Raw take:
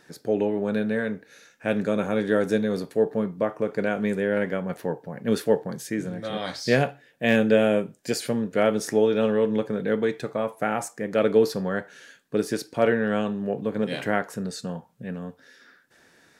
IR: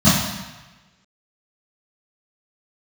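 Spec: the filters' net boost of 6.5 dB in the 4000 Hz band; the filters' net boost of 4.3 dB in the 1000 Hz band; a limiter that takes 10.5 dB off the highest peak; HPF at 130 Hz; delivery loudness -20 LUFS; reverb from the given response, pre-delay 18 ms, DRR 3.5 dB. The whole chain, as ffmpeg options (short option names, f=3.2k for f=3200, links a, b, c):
-filter_complex "[0:a]highpass=130,equalizer=f=1k:t=o:g=6,equalizer=f=4k:t=o:g=8,alimiter=limit=-15.5dB:level=0:latency=1,asplit=2[a][b];[1:a]atrim=start_sample=2205,adelay=18[c];[b][c]afir=irnorm=-1:irlink=0,volume=-26.5dB[d];[a][d]amix=inputs=2:normalize=0,volume=-1dB"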